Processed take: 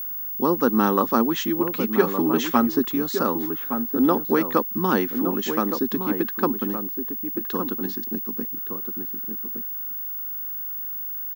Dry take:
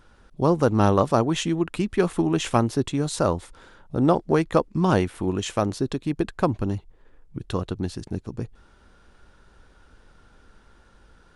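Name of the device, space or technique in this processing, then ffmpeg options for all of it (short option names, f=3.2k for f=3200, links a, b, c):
old television with a line whistle: -filter_complex "[0:a]highpass=f=220:w=0.5412,highpass=f=220:w=1.3066,equalizer=f=230:t=q:w=4:g=9,equalizer=f=640:t=q:w=4:g=-10,equalizer=f=1.2k:t=q:w=4:g=4,equalizer=f=1.7k:t=q:w=4:g=4,equalizer=f=2.6k:t=q:w=4:g=-4,lowpass=f=6.6k:w=0.5412,lowpass=f=6.6k:w=1.3066,aeval=exprs='val(0)+0.0398*sin(2*PI*15625*n/s)':c=same,asettb=1/sr,asplit=3[a][b][c];[a]atrim=end=1.774[d];[b]atrim=start=1.77:end=2.79,asetpts=PTS-STARTPTS,afade=t=in:d=0.004:c=qsin,afade=t=out:st=1.016:d=0.004:c=qsin,aecho=1:1:7.2:0.55,atrim=end_sample=44982[e];[c]atrim=start=2.786[f];[d][e]acrossfade=d=0.004:c1=hsin:c2=qsin[g];[g][f]acrossfade=d=0.004:c1=qsin:c2=hsin,asplit=2[h][i];[i]adelay=1166,volume=-7dB,highshelf=f=4k:g=-26.2[j];[h][j]amix=inputs=2:normalize=0"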